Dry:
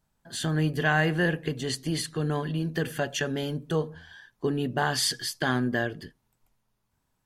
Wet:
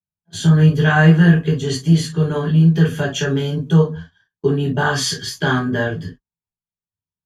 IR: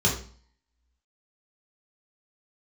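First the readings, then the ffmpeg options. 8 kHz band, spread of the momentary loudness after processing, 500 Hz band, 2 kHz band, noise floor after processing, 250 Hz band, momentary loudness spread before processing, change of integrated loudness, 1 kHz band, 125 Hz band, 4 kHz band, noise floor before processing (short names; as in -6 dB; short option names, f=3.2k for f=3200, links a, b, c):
+5.5 dB, 9 LU, +9.0 dB, +7.5 dB, under -85 dBFS, +13.0 dB, 9 LU, +11.5 dB, +7.0 dB, +16.0 dB, +6.0 dB, -76 dBFS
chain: -filter_complex "[0:a]agate=range=-32dB:threshold=-45dB:ratio=16:detection=peak,adynamicequalizer=threshold=0.00794:dfrequency=1300:dqfactor=2.1:tfrequency=1300:tqfactor=2.1:attack=5:release=100:ratio=0.375:range=3:mode=boostabove:tftype=bell[a];[1:a]atrim=start_sample=2205,atrim=end_sample=3087[b];[a][b]afir=irnorm=-1:irlink=0,volume=-7dB"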